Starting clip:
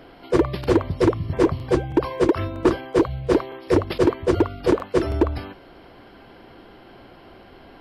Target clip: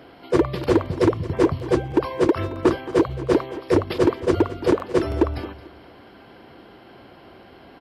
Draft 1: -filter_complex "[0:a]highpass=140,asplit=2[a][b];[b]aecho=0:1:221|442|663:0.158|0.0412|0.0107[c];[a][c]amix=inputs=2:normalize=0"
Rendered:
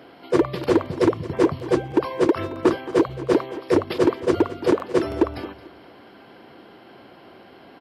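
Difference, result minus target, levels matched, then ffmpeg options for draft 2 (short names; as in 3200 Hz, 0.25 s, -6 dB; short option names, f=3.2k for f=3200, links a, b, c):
125 Hz band -4.5 dB
-filter_complex "[0:a]highpass=66,asplit=2[a][b];[b]aecho=0:1:221|442|663:0.158|0.0412|0.0107[c];[a][c]amix=inputs=2:normalize=0"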